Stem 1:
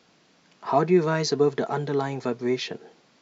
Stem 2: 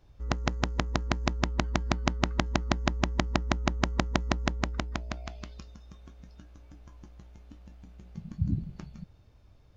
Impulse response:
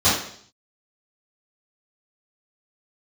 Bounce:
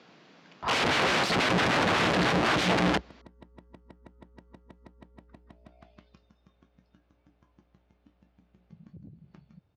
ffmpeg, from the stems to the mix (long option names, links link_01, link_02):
-filter_complex "[0:a]volume=-1.5dB,asplit=2[link_01][link_02];[1:a]acompressor=threshold=-32dB:ratio=6,aeval=exprs='0.119*sin(PI/2*2.51*val(0)/0.119)':channel_layout=same,dynaudnorm=framelen=510:gausssize=3:maxgain=6dB,adelay=550,volume=-2dB[link_03];[link_02]apad=whole_len=454885[link_04];[link_03][link_04]sidechaingate=range=-31dB:threshold=-55dB:ratio=16:detection=peak[link_05];[link_01][link_05]amix=inputs=2:normalize=0,acontrast=70,aeval=exprs='(mod(8.41*val(0)+1,2)-1)/8.41':channel_layout=same,highpass=110,lowpass=3700"